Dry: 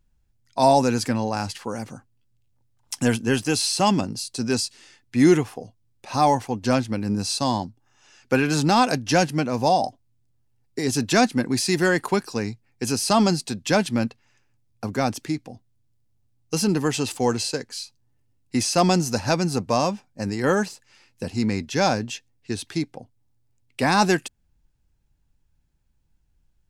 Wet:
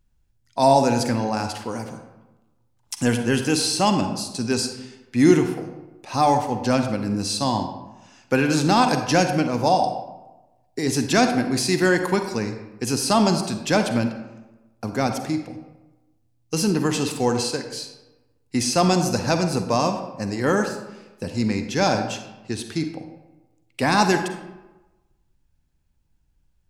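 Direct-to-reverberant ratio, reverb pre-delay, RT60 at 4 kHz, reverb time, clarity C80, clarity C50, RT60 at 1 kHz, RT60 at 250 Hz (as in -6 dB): 6.5 dB, 39 ms, 0.65 s, 1.1 s, 9.5 dB, 7.5 dB, 1.1 s, 1.1 s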